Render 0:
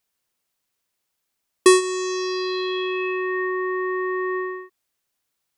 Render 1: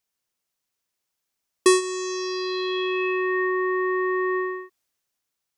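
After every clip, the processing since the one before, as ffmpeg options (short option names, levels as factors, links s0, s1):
-af "equalizer=f=5900:t=o:w=0.53:g=3,dynaudnorm=f=200:g=9:m=2,volume=0.562"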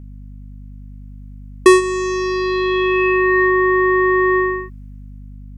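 -af "highshelf=f=2900:t=q:w=1.5:g=-7,acontrast=48,aeval=exprs='val(0)+0.0141*(sin(2*PI*50*n/s)+sin(2*PI*2*50*n/s)/2+sin(2*PI*3*50*n/s)/3+sin(2*PI*4*50*n/s)/4+sin(2*PI*5*50*n/s)/5)':c=same,volume=1.41"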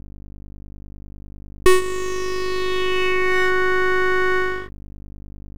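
-af "aeval=exprs='max(val(0),0)':c=same"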